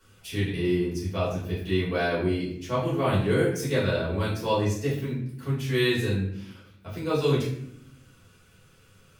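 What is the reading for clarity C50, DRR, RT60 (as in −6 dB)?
4.0 dB, −9.5 dB, 0.70 s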